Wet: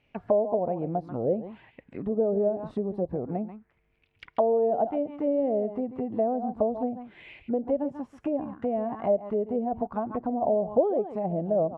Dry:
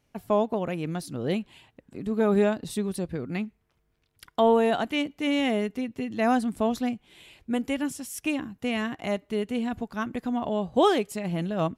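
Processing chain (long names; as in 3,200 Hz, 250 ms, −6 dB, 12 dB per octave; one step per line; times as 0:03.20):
parametric band 640 Hz +3 dB 1.4 octaves
on a send: single-tap delay 138 ms −14.5 dB
on the sum: downward compressor 4 to 1, threshold −28 dBFS, peak gain reduction 12.5 dB
parametric band 1,400 Hz −4.5 dB 1.1 octaves
envelope-controlled low-pass 570–2,600 Hz down, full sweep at −27 dBFS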